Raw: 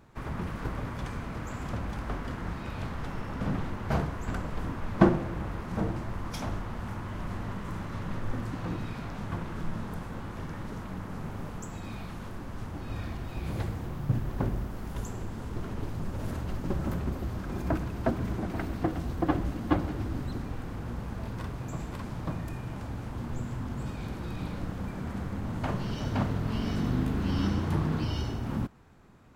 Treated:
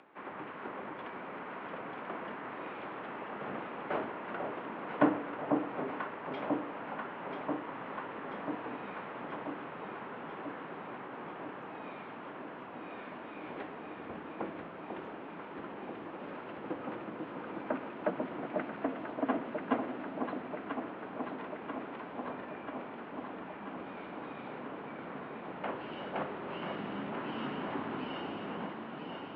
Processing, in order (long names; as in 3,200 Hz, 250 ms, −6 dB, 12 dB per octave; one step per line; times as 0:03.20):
single-sideband voice off tune −51 Hz 330–3,100 Hz
upward compression, threshold −53 dBFS
delay that swaps between a low-pass and a high-pass 494 ms, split 1,000 Hz, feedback 85%, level −4 dB
level −2 dB